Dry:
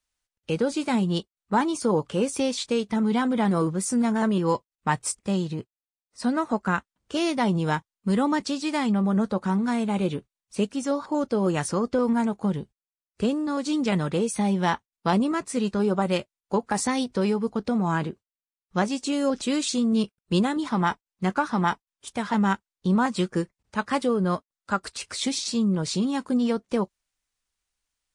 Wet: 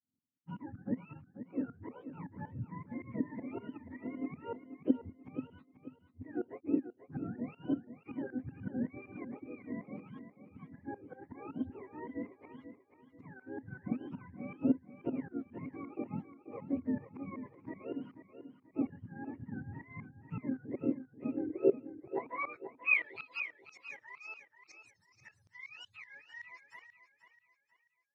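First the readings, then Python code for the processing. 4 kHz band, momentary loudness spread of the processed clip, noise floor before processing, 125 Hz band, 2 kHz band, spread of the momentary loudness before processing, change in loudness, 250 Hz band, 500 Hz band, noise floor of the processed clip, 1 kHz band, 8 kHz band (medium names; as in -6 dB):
under -25 dB, 18 LU, under -85 dBFS, -17.5 dB, -8.5 dB, 6 LU, -14.0 dB, -14.5 dB, -15.0 dB, -74 dBFS, -22.0 dB, under -35 dB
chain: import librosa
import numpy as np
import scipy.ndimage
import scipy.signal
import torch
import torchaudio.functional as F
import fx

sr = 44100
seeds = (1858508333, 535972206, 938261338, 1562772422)

y = fx.octave_mirror(x, sr, pivot_hz=680.0)
y = fx.tremolo_shape(y, sr, shape='saw_up', hz=5.3, depth_pct=95)
y = fx.filter_sweep_bandpass(y, sr, from_hz=260.0, to_hz=5800.0, start_s=21.41, end_s=23.49, q=6.9)
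y = fx.echo_feedback(y, sr, ms=486, feedback_pct=35, wet_db=-11)
y = F.gain(torch.from_numpy(y), 7.5).numpy()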